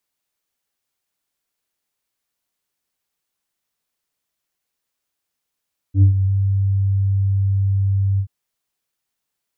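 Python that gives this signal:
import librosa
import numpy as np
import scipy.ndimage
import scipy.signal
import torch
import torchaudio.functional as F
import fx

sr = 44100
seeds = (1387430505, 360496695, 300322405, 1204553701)

y = fx.sub_voice(sr, note=43, wave='square', cutoff_hz=100.0, q=1.4, env_oct=1.5, env_s=0.33, attack_ms=82.0, decay_s=0.11, sustain_db=-10.0, release_s=0.08, note_s=2.25, slope=24)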